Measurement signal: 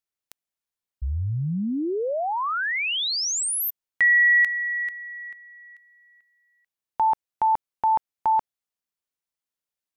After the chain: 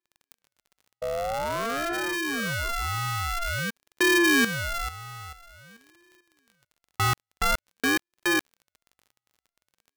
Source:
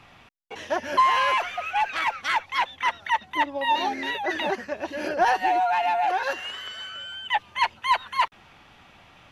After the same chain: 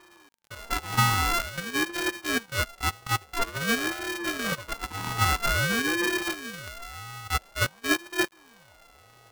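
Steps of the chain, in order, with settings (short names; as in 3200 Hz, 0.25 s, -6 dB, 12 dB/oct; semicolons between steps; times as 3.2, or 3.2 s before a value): sample sorter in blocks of 64 samples; crackle 34/s -41 dBFS; ring modulator with a swept carrier 810 Hz, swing 30%, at 0.49 Hz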